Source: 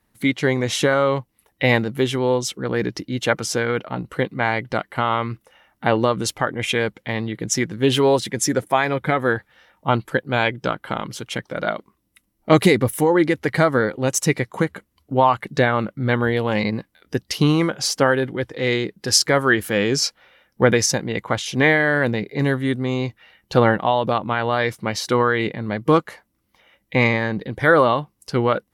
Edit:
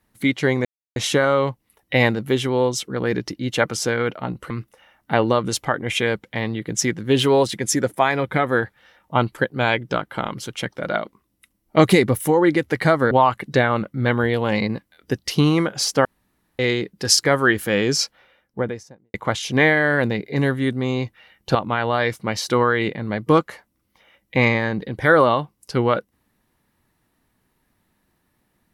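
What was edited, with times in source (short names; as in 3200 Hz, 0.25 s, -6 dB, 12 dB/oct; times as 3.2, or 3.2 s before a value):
0.65 insert silence 0.31 s
4.19–5.23 cut
13.84–15.14 cut
18.08–18.62 room tone
19.98–21.17 studio fade out
23.58–24.14 cut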